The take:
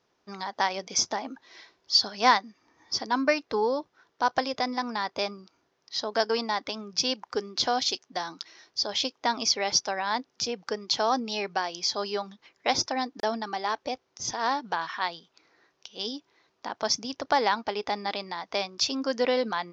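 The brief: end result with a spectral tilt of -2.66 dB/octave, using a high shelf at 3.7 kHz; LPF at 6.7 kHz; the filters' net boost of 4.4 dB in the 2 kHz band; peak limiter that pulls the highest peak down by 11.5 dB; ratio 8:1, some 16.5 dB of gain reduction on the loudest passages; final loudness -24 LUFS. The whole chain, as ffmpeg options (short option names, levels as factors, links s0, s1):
-af "lowpass=6700,equalizer=f=2000:t=o:g=7,highshelf=f=3700:g=-7,acompressor=threshold=0.0282:ratio=8,volume=6.31,alimiter=limit=0.237:level=0:latency=1"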